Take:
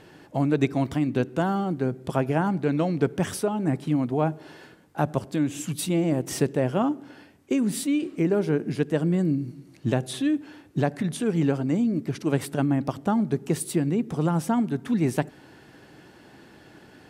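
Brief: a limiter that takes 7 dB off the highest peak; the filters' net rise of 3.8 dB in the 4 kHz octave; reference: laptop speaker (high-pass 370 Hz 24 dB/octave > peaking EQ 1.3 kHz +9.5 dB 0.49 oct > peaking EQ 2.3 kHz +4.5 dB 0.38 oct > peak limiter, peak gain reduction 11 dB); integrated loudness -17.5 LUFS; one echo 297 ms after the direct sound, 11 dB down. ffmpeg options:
-af "equalizer=f=4000:t=o:g=4,alimiter=limit=0.168:level=0:latency=1,highpass=f=370:w=0.5412,highpass=f=370:w=1.3066,equalizer=f=1300:t=o:w=0.49:g=9.5,equalizer=f=2300:t=o:w=0.38:g=4.5,aecho=1:1:297:0.282,volume=7.5,alimiter=limit=0.447:level=0:latency=1"

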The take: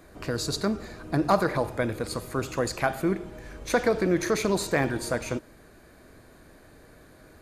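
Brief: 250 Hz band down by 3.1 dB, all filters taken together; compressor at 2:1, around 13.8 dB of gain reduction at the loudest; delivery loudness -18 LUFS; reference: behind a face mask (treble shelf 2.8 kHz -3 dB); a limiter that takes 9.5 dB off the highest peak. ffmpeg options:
-af "equalizer=f=250:t=o:g=-4.5,acompressor=threshold=0.00631:ratio=2,alimiter=level_in=2.37:limit=0.0631:level=0:latency=1,volume=0.422,highshelf=f=2800:g=-3,volume=18.8"

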